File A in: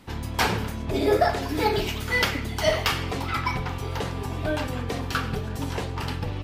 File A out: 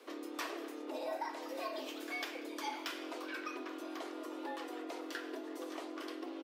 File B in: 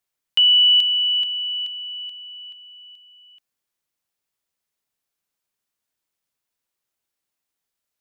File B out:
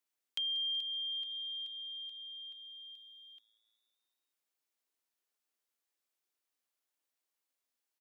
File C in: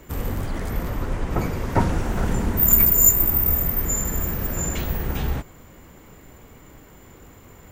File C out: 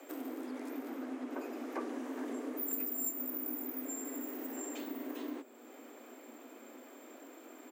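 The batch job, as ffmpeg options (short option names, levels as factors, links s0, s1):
-filter_complex "[0:a]afreqshift=230,acompressor=threshold=0.00794:ratio=2,asplit=6[s0][s1][s2][s3][s4][s5];[s1]adelay=188,afreqshift=110,volume=0.075[s6];[s2]adelay=376,afreqshift=220,volume=0.0457[s7];[s3]adelay=564,afreqshift=330,volume=0.0279[s8];[s4]adelay=752,afreqshift=440,volume=0.017[s9];[s5]adelay=940,afreqshift=550,volume=0.0104[s10];[s0][s6][s7][s8][s9][s10]amix=inputs=6:normalize=0,volume=0.501"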